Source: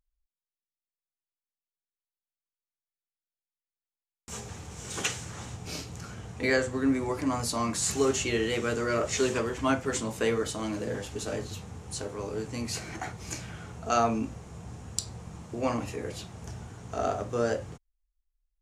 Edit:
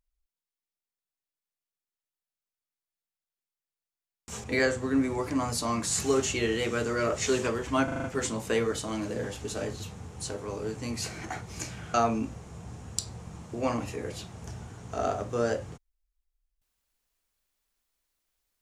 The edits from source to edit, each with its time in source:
0:04.44–0:06.35: remove
0:09.75: stutter 0.04 s, 6 plays
0:13.65–0:13.94: remove

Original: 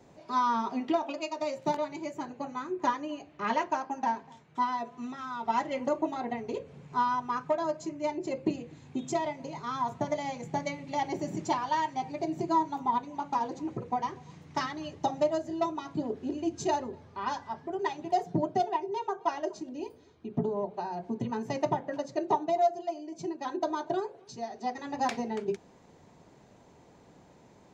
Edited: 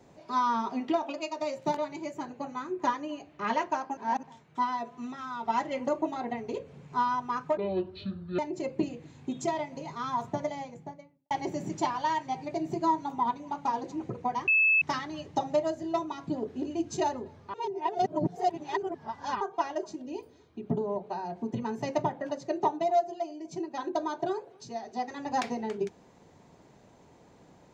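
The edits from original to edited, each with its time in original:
0:03.97–0:04.23: reverse
0:07.57–0:08.06: play speed 60%
0:09.88–0:10.98: fade out and dull
0:14.15–0:14.49: beep over 2,610 Hz −19.5 dBFS
0:17.21–0:19.08: reverse

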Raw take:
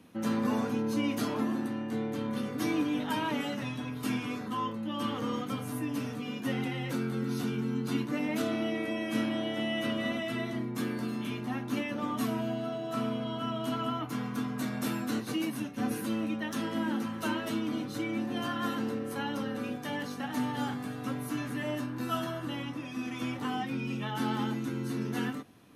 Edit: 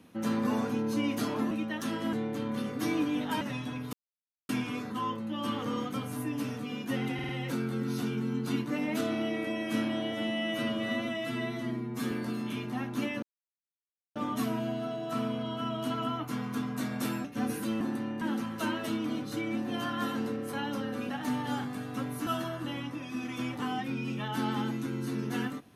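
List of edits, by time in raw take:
0:01.51–0:01.92: swap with 0:16.22–0:16.84
0:03.20–0:03.53: remove
0:04.05: splice in silence 0.56 s
0:06.70: stutter 0.05 s, 4 plays
0:09.53–0:10.86: time-stretch 1.5×
0:11.97: splice in silence 0.93 s
0:15.06–0:15.66: remove
0:19.72–0:20.19: remove
0:21.36–0:22.09: remove

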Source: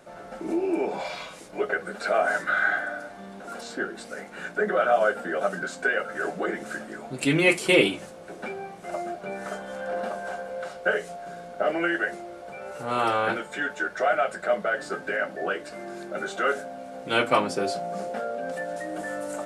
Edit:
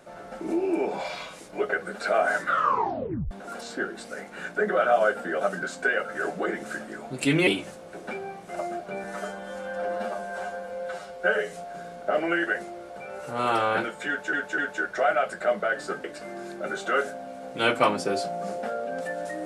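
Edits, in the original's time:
0:02.47: tape stop 0.84 s
0:07.47–0:07.82: remove
0:09.39–0:11.05: time-stretch 1.5×
0:13.60–0:13.85: repeat, 3 plays
0:15.06–0:15.55: remove

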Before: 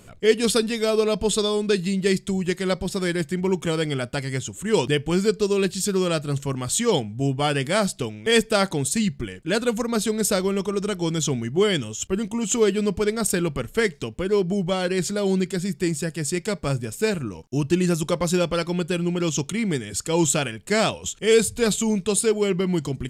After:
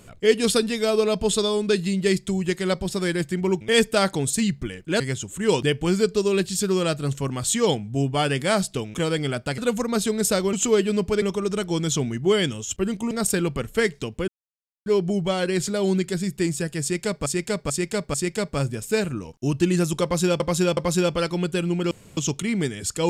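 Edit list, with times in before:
0:03.61–0:04.25: swap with 0:08.19–0:09.58
0:12.42–0:13.11: move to 0:10.53
0:14.28: splice in silence 0.58 s
0:16.24–0:16.68: repeat, 4 plays
0:18.13–0:18.50: repeat, 3 plays
0:19.27: splice in room tone 0.26 s

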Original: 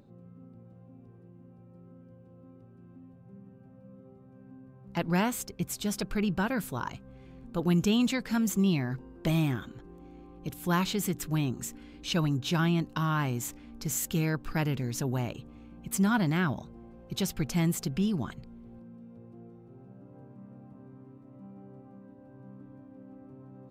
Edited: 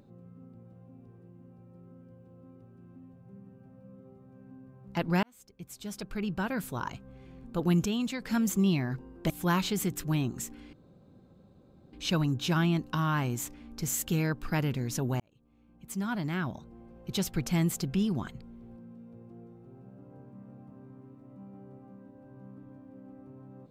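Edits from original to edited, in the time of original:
0:05.23–0:06.90: fade in linear
0:07.86–0:08.22: clip gain −5.5 dB
0:09.30–0:10.53: remove
0:11.96: splice in room tone 1.20 s
0:15.23–0:17.20: fade in

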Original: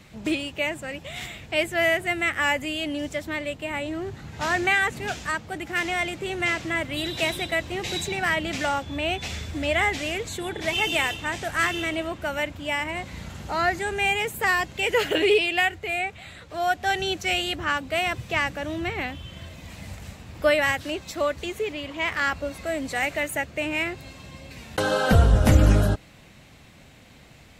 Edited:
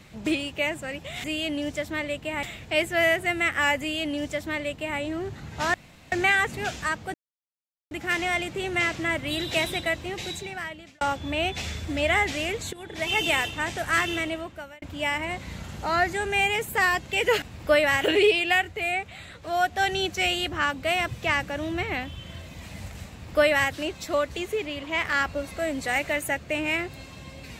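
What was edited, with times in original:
0:02.61–0:03.80: duplicate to 0:01.24
0:04.55: splice in room tone 0.38 s
0:05.57: splice in silence 0.77 s
0:07.42–0:08.67: fade out
0:10.39–0:10.85: fade in, from −15.5 dB
0:11.82–0:12.48: fade out
0:20.17–0:20.76: duplicate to 0:15.08

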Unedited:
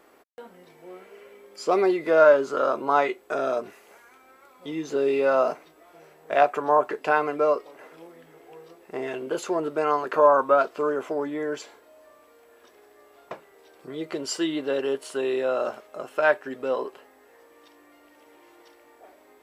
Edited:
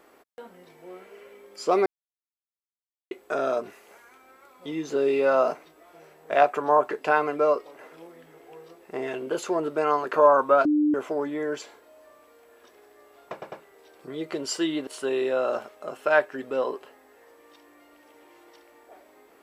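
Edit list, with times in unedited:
0:01.86–0:03.11: silence
0:10.65–0:10.94: beep over 299 Hz −18 dBFS
0:13.32: stutter 0.10 s, 3 plays
0:14.67–0:14.99: remove

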